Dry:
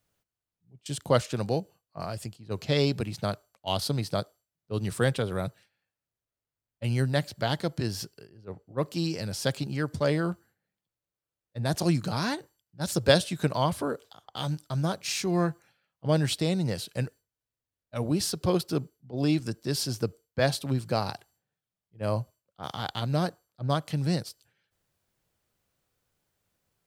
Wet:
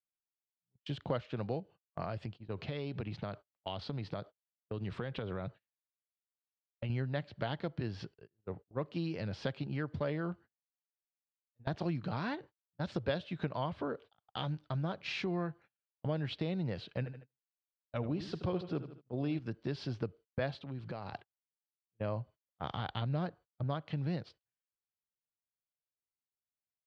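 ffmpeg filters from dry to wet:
-filter_complex "[0:a]asettb=1/sr,asplit=3[a][b][c];[a]atrim=end=2.214[d];[b]atrim=start=2.21:end=6.9,asetpts=PTS-STARTPTS,afade=t=in:d=0.004:c=qsin,afade=t=out:st=4.686:d=0.004:c=qsin,acompressor=threshold=-33dB:ratio=4:attack=3.2:release=140:knee=1:detection=peak[e];[c]atrim=start=6.896[f];[d][e]acrossfade=d=0.004:c1=hsin:c2=qsin[g];[g][f]acrossfade=d=0.004:c1=qsin:c2=hsin,asettb=1/sr,asplit=3[h][i][j];[h]atrim=end=16.984[k];[i]atrim=start=16.98:end=19.39,asetpts=PTS-STARTPTS,afade=t=in:d=0.004:c=qsin,afade=t=out:st=2.406:d=0.004:c=qsin,aecho=1:1:77|154|231|308:0.251|0.0904|0.0326|0.0117,atrim=end_sample=106281[l];[j]atrim=start=19.386[m];[k][l]acrossfade=d=0.004:c1=hsin:c2=qsin[n];[n][m]acrossfade=d=0.004:c1=qsin:c2=hsin,asettb=1/sr,asplit=3[o][p][q];[o]atrim=end=20.594[r];[p]atrim=start=20.59:end=21.13,asetpts=PTS-STARTPTS,afade=t=in:d=0.004:c=qsin,afade=t=out:st=0.536:d=0.004:c=qsin,acompressor=threshold=-39dB:ratio=4:attack=3.2:release=140:knee=1:detection=peak[s];[q]atrim=start=21.126[t];[r][s]acrossfade=d=0.004:c1=hsin:c2=qsin[u];[u][t]acrossfade=d=0.004:c1=qsin:c2=hsin,asettb=1/sr,asplit=3[v][w][x];[v]atrim=end=22.634[y];[w]atrim=start=22.63:end=23.64,asetpts=PTS-STARTPTS,afade=t=in:d=0.004:c=qsin,afade=t=out:st=1.006:d=0.004:c=qsin,lowshelf=f=96:g=9.5[z];[x]atrim=start=23.636[aa];[y][z]acrossfade=d=0.004:c1=hsin:c2=qsin[ab];[ab][aa]acrossfade=d=0.004:c1=qsin:c2=hsin,asplit=2[ac][ad];[ac]atrim=end=11.67,asetpts=PTS-STARTPTS,afade=t=out:st=10.31:d=1.36:silence=0.0944061[ae];[ad]atrim=start=11.67,asetpts=PTS-STARTPTS,afade=t=in:d=0.004:c=hsin:silence=0.0944061[af];[ae][af]concat=n=2:v=0:a=1,agate=range=-31dB:threshold=-46dB:ratio=16:detection=peak,lowpass=f=3.4k:w=0.5412,lowpass=f=3.4k:w=1.3066,acompressor=threshold=-35dB:ratio=3"

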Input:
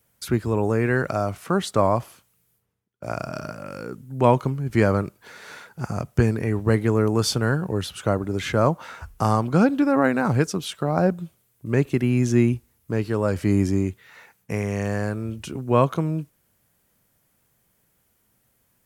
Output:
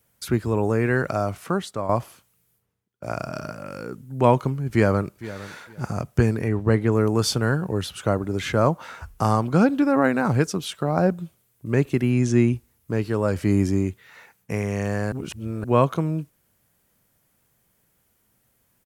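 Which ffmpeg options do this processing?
-filter_complex "[0:a]asplit=2[a][b];[b]afade=t=in:st=4.7:d=0.01,afade=t=out:st=5.46:d=0.01,aecho=0:1:460|920:0.158489|0.0316979[c];[a][c]amix=inputs=2:normalize=0,asettb=1/sr,asplit=3[d][e][f];[d]atrim=end=6.484[g];[e]atrim=start=6.48:end=6.92,asetpts=PTS-STARTPTS,afade=t=in:d=0.004:c=qsin,afade=t=out:st=0.436:d=0.004:c=qsin,aemphasis=mode=reproduction:type=cd[h];[f]atrim=start=6.916[i];[g][h]acrossfade=d=0.004:c1=hsin:c2=qsin[j];[j][i]acrossfade=d=0.004:c1=qsin:c2=hsin,asettb=1/sr,asplit=3[k][l][m];[k]atrim=end=12.124[n];[l]atrim=start=12.12:end=12.54,asetpts=PTS-STARTPTS,afade=t=in:d=0.004:c=qsin,afade=t=out:st=0.416:d=0.004:c=qsin,lowpass=f=10k:w=0.5412,lowpass=f=10k:w=1.3066[o];[m]atrim=start=12.536[p];[n][o]acrossfade=d=0.004:c1=hsin:c2=qsin[q];[q][p]acrossfade=d=0.004:c1=qsin:c2=hsin,asplit=4[r][s][t][u];[r]atrim=end=1.89,asetpts=PTS-STARTPTS,afade=t=out:st=1.47:d=0.42:c=qua:silence=0.316228[v];[s]atrim=start=1.89:end=15.122,asetpts=PTS-STARTPTS,afade=t=in:d=0.004:c=hsin:silence=0.316228[w];[t]atrim=start=15.118:end=15.642,asetpts=PTS-STARTPTS,areverse[x];[u]atrim=start=15.638[y];[v][w]concat=n=2:v=0:a=1[z];[z][x]acrossfade=d=0.004:c1=hsin:c2=hsin[aa];[aa][y]acrossfade=d=0.004:c1=hsin:c2=hsin"

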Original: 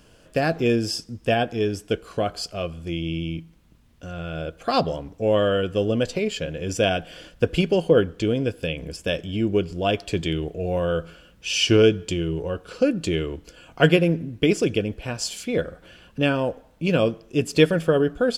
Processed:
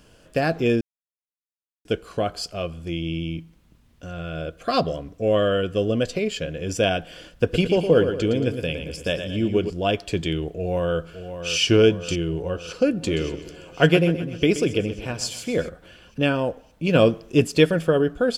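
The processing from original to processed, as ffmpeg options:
-filter_complex "[0:a]asettb=1/sr,asplit=3[a][b][c];[a]atrim=end=4.174[d];[b]atrim=start=4.17:end=6.66,asetpts=PTS-STARTPTS,afade=t=in:d=0.004:c=qsin,afade=t=out:st=2.486:d=0.004:c=qsin,asuperstop=centerf=870:order=8:qfactor=5.1[e];[c]atrim=start=6.656[f];[d][e]acrossfade=d=0.004:c1=hsin:c2=qsin[g];[g][f]acrossfade=d=0.004:c1=qsin:c2=hsin,asettb=1/sr,asplit=3[h][i][j];[h]atrim=end=7.304[k];[i]atrim=start=7.3:end=9.7,asetpts=PTS-STARTPTS,afade=t=in:d=0.004:c=qsin,afade=t=out:st=2.396:d=0.004:c=qsin,aecho=1:1:113|226|339|452|565:0.398|0.179|0.0806|0.0363|0.0163,atrim=end_sample=105840[l];[j]atrim=start=9.696[m];[k][l]acrossfade=d=0.004:c1=hsin:c2=qsin[n];[n][m]acrossfade=d=0.004:c1=qsin:c2=hsin,asplit=2[o][p];[p]afade=t=in:st=10.56:d=0.01,afade=t=out:st=11.58:d=0.01,aecho=0:1:570|1140|1710|2280|2850|3420|3990|4560|5130:0.316228|0.205548|0.133606|0.0868441|0.0564486|0.0366916|0.0238495|0.0155022|0.0100764[q];[o][q]amix=inputs=2:normalize=0,asplit=3[r][s][t];[r]afade=t=out:st=13.02:d=0.02[u];[s]aecho=1:1:128|256|384|512|640:0.224|0.116|0.0605|0.0315|0.0164,afade=t=in:st=13.02:d=0.02,afade=t=out:st=15.68:d=0.02[v];[t]afade=t=in:st=15.68:d=0.02[w];[u][v][w]amix=inputs=3:normalize=0,asplit=3[x][y][z];[x]afade=t=out:st=16.94:d=0.02[aa];[y]acontrast=22,afade=t=in:st=16.94:d=0.02,afade=t=out:st=17.46:d=0.02[ab];[z]afade=t=in:st=17.46:d=0.02[ac];[aa][ab][ac]amix=inputs=3:normalize=0,asplit=3[ad][ae][af];[ad]atrim=end=0.81,asetpts=PTS-STARTPTS,afade=t=out:st=0.806:d=0.004:c=hsin[ag];[ae]atrim=start=0.81:end=1.85,asetpts=PTS-STARTPTS,volume=0[ah];[af]atrim=start=1.85,asetpts=PTS-STARTPTS,afade=t=in:d=0.004:c=hsin[ai];[ag][ah][ai]concat=n=3:v=0:a=1"

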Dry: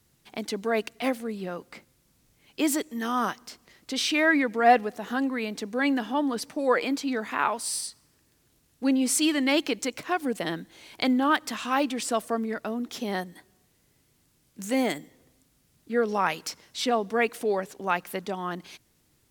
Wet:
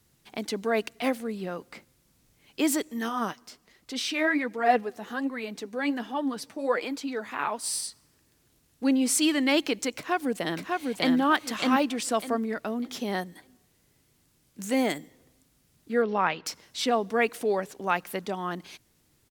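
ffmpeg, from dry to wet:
-filter_complex "[0:a]asplit=3[a][b][c];[a]afade=t=out:st=3.08:d=0.02[d];[b]flanger=delay=0.8:depth=9.1:regen=42:speed=1.3:shape=triangular,afade=t=in:st=3.08:d=0.02,afade=t=out:st=7.62:d=0.02[e];[c]afade=t=in:st=7.62:d=0.02[f];[d][e][f]amix=inputs=3:normalize=0,asplit=2[g][h];[h]afade=t=in:st=9.96:d=0.01,afade=t=out:st=11.16:d=0.01,aecho=0:1:600|1200|1800|2400:0.749894|0.187474|0.0468684|0.0117171[i];[g][i]amix=inputs=2:normalize=0,asettb=1/sr,asplit=3[j][k][l];[j]atrim=end=16.024[m];[k]atrim=start=16.02:end=16.46,asetpts=PTS-STARTPTS,afade=t=in:d=0.004:c=qsin,afade=t=out:st=0.436:d=0.004:c=qsin,lowpass=f=3.9k:w=0.5412,lowpass=f=3.9k:w=1.3066[n];[l]atrim=start=16.456[o];[m][n]acrossfade=d=0.004:c1=hsin:c2=qsin[p];[p][o]acrossfade=d=0.004:c1=qsin:c2=hsin"

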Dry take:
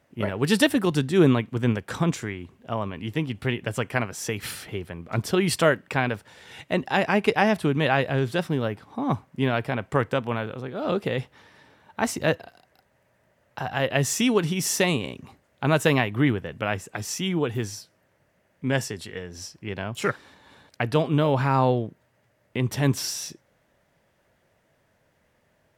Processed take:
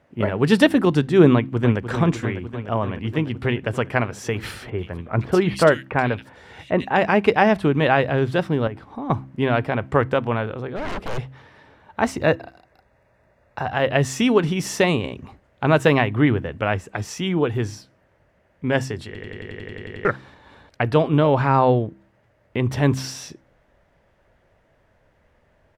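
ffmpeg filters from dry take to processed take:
-filter_complex "[0:a]asplit=2[a][b];[b]afade=t=in:st=1.33:d=0.01,afade=t=out:st=1.81:d=0.01,aecho=0:1:300|600|900|1200|1500|1800|2100|2400|2700|3000|3300|3600:0.354813|0.283851|0.227081|0.181664|0.145332|0.116265|0.0930122|0.0744098|0.0595278|0.0476222|0.0380978|0.0304782[c];[a][c]amix=inputs=2:normalize=0,asettb=1/sr,asplit=3[d][e][f];[d]atrim=end=4.704[g];[e]atrim=start=4.7:end=6.96,asetpts=PTS-STARTPTS,afade=t=in:d=0.004:c=qsin,afade=t=out:st=2.256:d=0.004:c=qsin,acrossover=split=2600[h][i];[i]adelay=80[j];[h][j]amix=inputs=2:normalize=0,atrim=end_sample=99666[k];[f]atrim=start=6.956[l];[g][k]acrossfade=d=0.004:c1=hsin:c2=qsin[m];[m][l]acrossfade=d=0.004:c1=qsin:c2=hsin,asettb=1/sr,asplit=3[n][o][p];[n]atrim=end=8.674[q];[o]atrim=start=8.67:end=9.1,asetpts=PTS-STARTPTS,afade=t=in:d=0.004:c=qsin,afade=t=out:st=0.426:d=0.004:c=qsin,acompressor=threshold=-31dB:ratio=6:attack=3.2:release=140:knee=1:detection=peak[r];[p]atrim=start=9.096[s];[q][r]acrossfade=d=0.004:c1=hsin:c2=qsin[t];[t][s]acrossfade=d=0.004:c1=qsin:c2=hsin,asplit=3[u][v][w];[u]afade=t=out:st=10.75:d=0.02[x];[v]aeval=exprs='0.0376*(abs(mod(val(0)/0.0376+3,4)-2)-1)':c=same,afade=t=in:st=10.75:d=0.02,afade=t=out:st=11.17:d=0.02[y];[w]afade=t=in:st=11.17:d=0.02[z];[x][y][z]amix=inputs=3:normalize=0,asettb=1/sr,asplit=3[aa][ab][ac];[aa]atrim=end=12.224[ad];[ab]atrim=start=12.22:end=13.65,asetpts=PTS-STARTPTS,afade=t=in:d=0.004:c=qsin,afade=t=out:st=1.426:d=0.004:c=qsin,asuperstop=centerf=3100:order=8:qfactor=7.3[ae];[ac]atrim=start=13.646[af];[ad][ae]acrossfade=d=0.004:c1=hsin:c2=qsin[ag];[ag][af]acrossfade=d=0.004:c1=qsin:c2=hsin,asplit=12[ah][ai][aj][ak][al][am][an][ao][ap][aq][ar][as];[ah]atrim=end=19.152[at];[ai]atrim=start=19.058:end=19.152[au];[aj]atrim=start=19.058:end=19.152[av];[ak]atrim=start=19.058:end=19.152[aw];[al]atrim=start=19.058:end=19.152[ax];[am]atrim=start=19.058:end=19.152[ay];[an]atrim=start=19.058:end=19.152[az];[ao]atrim=start=19.058:end=19.152[ba];[ap]atrim=start=19.058:end=19.152[bb];[aq]atrim=start=19.058:end=19.152[bc];[ar]atrim=start=19.058:end=19.152[bd];[as]atrim=start=20.048[be];[at][au]acrossfade=d=0.004:c1=hsin:c2=hsin[bf];[bf][av]acrossfade=d=0.004:c1=hsin:c2=hsin[bg];[bg][aw]acrossfade=d=0.004:c1=hsin:c2=hsin[bh];[bh][ax]acrossfade=d=0.004:c1=hsin:c2=hsin[bi];[bi][ay]acrossfade=d=0.004:c1=hsin:c2=hsin[bj];[bj][az]acrossfade=d=0.004:c1=hsin:c2=hsin[bk];[bk][ba]acrossfade=d=0.004:c1=hsin:c2=hsin[bl];[bl][bb]acrossfade=d=0.004:c1=hsin:c2=hsin[bm];[bm][bc]acrossfade=d=0.004:c1=hsin:c2=hsin[bn];[bn][bd]acrossfade=d=0.004:c1=hsin:c2=hsin[bo];[bo][be]acrossfade=d=0.004:c1=hsin:c2=hsin,lowpass=f=2k:p=1,bandreject=f=65.84:t=h:w=4,bandreject=f=131.68:t=h:w=4,bandreject=f=197.52:t=h:w=4,bandreject=f=263.36:t=h:w=4,bandreject=f=329.2:t=h:w=4,asubboost=boost=3.5:cutoff=70,volume=6dB"

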